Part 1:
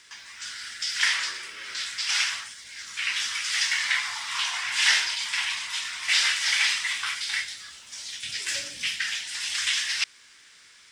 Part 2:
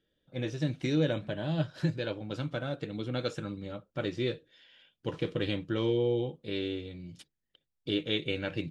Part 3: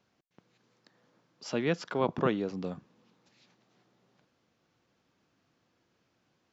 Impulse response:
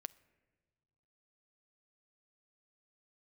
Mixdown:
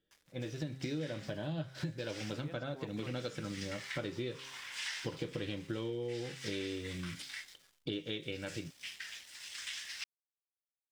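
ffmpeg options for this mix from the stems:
-filter_complex "[0:a]aeval=exprs='sgn(val(0))*max(abs(val(0))-0.00891,0)':c=same,volume=0.178[s0];[1:a]bandreject=f=132.7:t=h:w=4,bandreject=f=265.4:t=h:w=4,bandreject=f=398.1:t=h:w=4,bandreject=f=530.8:t=h:w=4,bandreject=f=663.5:t=h:w=4,bandreject=f=796.2:t=h:w=4,bandreject=f=928.9:t=h:w=4,bandreject=f=1061.6:t=h:w=4,bandreject=f=1194.3:t=h:w=4,bandreject=f=1327:t=h:w=4,bandreject=f=1459.7:t=h:w=4,bandreject=f=1592.4:t=h:w=4,bandreject=f=1725.1:t=h:w=4,bandreject=f=1857.8:t=h:w=4,bandreject=f=1990.5:t=h:w=4,bandreject=f=2123.2:t=h:w=4,bandreject=f=2255.9:t=h:w=4,bandreject=f=2388.6:t=h:w=4,bandreject=f=2521.3:t=h:w=4,bandreject=f=2654:t=h:w=4,bandreject=f=2786.7:t=h:w=4,bandreject=f=2919.4:t=h:w=4,bandreject=f=3052.1:t=h:w=4,bandreject=f=3184.8:t=h:w=4,bandreject=f=3317.5:t=h:w=4,bandreject=f=3450.2:t=h:w=4,bandreject=f=3582.9:t=h:w=4,bandreject=f=3715.6:t=h:w=4,bandreject=f=3848.3:t=h:w=4,bandreject=f=3981:t=h:w=4,bandreject=f=4113.7:t=h:w=4,dynaudnorm=f=140:g=9:m=2.82,volume=0.562[s1];[2:a]adelay=800,volume=0.2[s2];[s0][s1][s2]amix=inputs=3:normalize=0,acompressor=threshold=0.0158:ratio=6"

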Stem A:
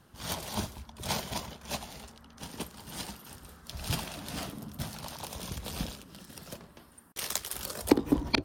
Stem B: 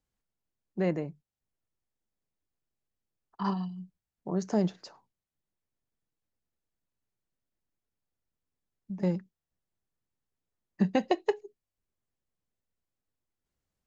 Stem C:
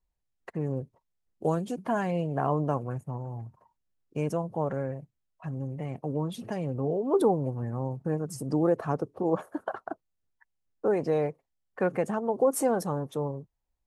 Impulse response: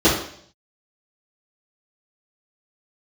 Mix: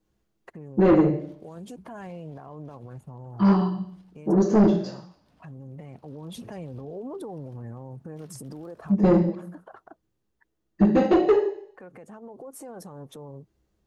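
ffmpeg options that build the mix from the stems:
-filter_complex "[0:a]lowpass=f=1300:p=1,acompressor=threshold=0.00891:ratio=6,adelay=1000,volume=0.133[s0];[1:a]volume=1,asplit=2[s1][s2];[s2]volume=0.251[s3];[2:a]acompressor=threshold=0.0355:ratio=6,alimiter=level_in=2.99:limit=0.0631:level=0:latency=1:release=131,volume=0.335,volume=1.12[s4];[3:a]atrim=start_sample=2205[s5];[s3][s5]afir=irnorm=-1:irlink=0[s6];[s0][s1][s4][s6]amix=inputs=4:normalize=0,dynaudnorm=f=370:g=7:m=1.41,asoftclip=type=tanh:threshold=0.251"

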